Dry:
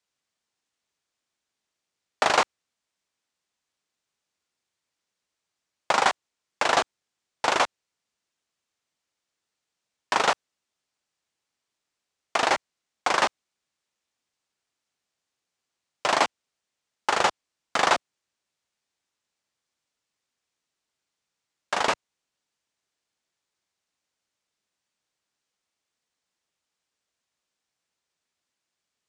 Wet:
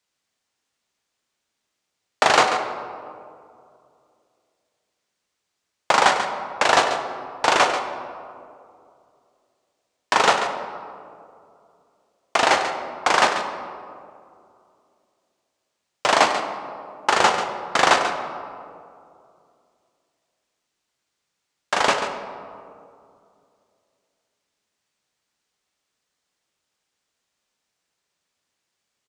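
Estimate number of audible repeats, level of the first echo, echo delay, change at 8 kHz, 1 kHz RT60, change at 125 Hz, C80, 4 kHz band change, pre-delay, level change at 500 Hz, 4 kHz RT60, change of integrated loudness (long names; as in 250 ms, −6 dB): 1, −10.0 dB, 139 ms, +5.5 dB, 2.2 s, +6.5 dB, 6.5 dB, +5.5 dB, 22 ms, +6.5 dB, 1.1 s, +4.5 dB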